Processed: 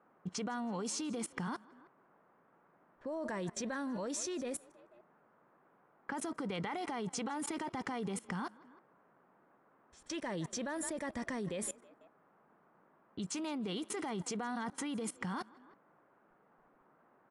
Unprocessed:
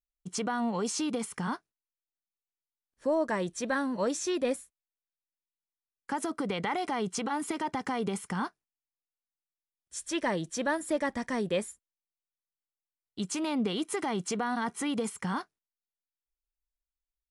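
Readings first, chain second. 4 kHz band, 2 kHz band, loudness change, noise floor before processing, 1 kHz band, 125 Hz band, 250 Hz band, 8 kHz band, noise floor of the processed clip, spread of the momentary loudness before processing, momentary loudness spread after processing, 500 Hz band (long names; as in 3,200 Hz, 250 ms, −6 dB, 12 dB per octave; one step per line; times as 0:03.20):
−6.5 dB, −8.0 dB, −7.5 dB, below −85 dBFS, −8.5 dB, −4.5 dB, −7.0 dB, −4.0 dB, −69 dBFS, 7 LU, 6 LU, −9.5 dB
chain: echo with shifted repeats 162 ms, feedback 40%, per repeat +35 Hz, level −21.5 dB
low-pass that shuts in the quiet parts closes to 2,000 Hz, open at −27.5 dBFS
output level in coarse steps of 22 dB
noise in a band 150–1,400 Hz −74 dBFS
low-shelf EQ 190 Hz +3.5 dB
level +5 dB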